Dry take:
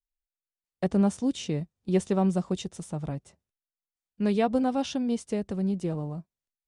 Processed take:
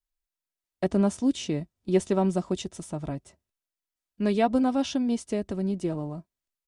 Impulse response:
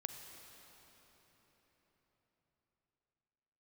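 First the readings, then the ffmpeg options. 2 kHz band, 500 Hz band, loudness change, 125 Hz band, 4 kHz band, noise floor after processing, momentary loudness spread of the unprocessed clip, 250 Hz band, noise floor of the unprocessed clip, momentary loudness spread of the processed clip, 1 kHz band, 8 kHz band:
+2.0 dB, +2.0 dB, +1.0 dB, −1.5 dB, +1.5 dB, below −85 dBFS, 11 LU, +1.0 dB, below −85 dBFS, 12 LU, +1.5 dB, +2.0 dB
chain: -af "aecho=1:1:3.1:0.35,volume=1.5dB"

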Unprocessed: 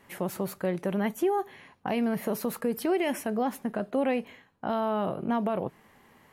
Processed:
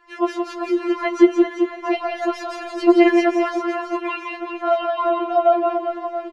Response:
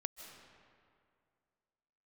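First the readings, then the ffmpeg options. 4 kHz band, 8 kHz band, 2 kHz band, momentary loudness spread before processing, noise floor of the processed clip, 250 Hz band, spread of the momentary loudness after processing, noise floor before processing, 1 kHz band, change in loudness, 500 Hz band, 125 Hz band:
+9.5 dB, can't be measured, +11.0 dB, 7 LU, −36 dBFS, +10.5 dB, 12 LU, −61 dBFS, +10.5 dB, +10.0 dB, +10.5 dB, below −20 dB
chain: -filter_complex "[0:a]lowpass=frequency=5600:width=0.5412,lowpass=frequency=5600:width=1.3066,equalizer=frequency=1200:width_type=o:width=0.33:gain=9.5,aecho=1:1:170|391|678.3|1052|1537:0.631|0.398|0.251|0.158|0.1,dynaudnorm=framelen=120:gausssize=3:maxgain=6.5dB,asplit=2[link_01][link_02];[1:a]atrim=start_sample=2205,afade=type=out:start_time=0.34:duration=0.01,atrim=end_sample=15435[link_03];[link_02][link_03]afir=irnorm=-1:irlink=0,volume=-1.5dB[link_04];[link_01][link_04]amix=inputs=2:normalize=0,afftfilt=real='re*4*eq(mod(b,16),0)':imag='im*4*eq(mod(b,16),0)':win_size=2048:overlap=0.75"

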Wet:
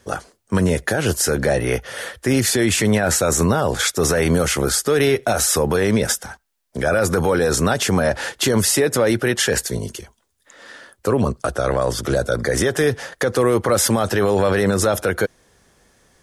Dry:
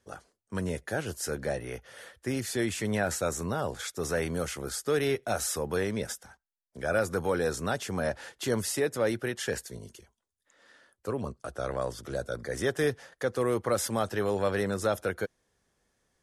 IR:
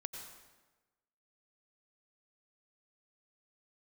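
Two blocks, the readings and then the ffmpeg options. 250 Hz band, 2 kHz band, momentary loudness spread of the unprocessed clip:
+13.0 dB, +12.0 dB, 10 LU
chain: -af "alimiter=level_in=25.5dB:limit=-1dB:release=50:level=0:latency=1,volume=-7.5dB"

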